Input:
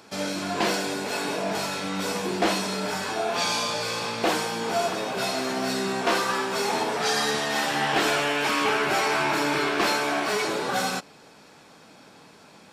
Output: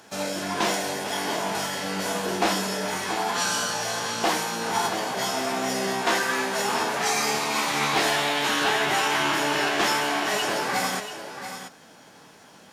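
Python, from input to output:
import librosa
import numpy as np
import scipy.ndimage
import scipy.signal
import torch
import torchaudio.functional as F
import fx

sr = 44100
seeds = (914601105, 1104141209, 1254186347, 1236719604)

y = x + 10.0 ** (-10.0 / 20.0) * np.pad(x, (int(684 * sr / 1000.0), 0))[:len(x)]
y = fx.formant_shift(y, sr, semitones=4)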